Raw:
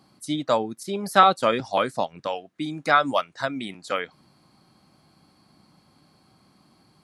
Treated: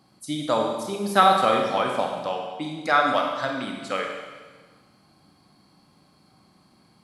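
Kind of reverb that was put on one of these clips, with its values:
four-comb reverb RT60 1.4 s, combs from 31 ms, DRR 1 dB
level −2 dB

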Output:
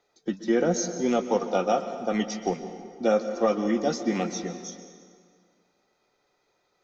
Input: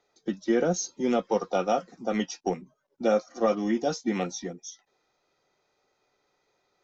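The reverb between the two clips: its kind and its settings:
dense smooth reverb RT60 2 s, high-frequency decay 0.75×, pre-delay 110 ms, DRR 9.5 dB
level +1 dB

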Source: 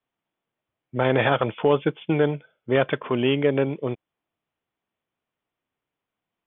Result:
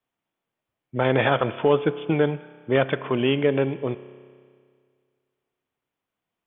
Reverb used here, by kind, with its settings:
spring reverb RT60 2 s, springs 30 ms, chirp 55 ms, DRR 14.5 dB

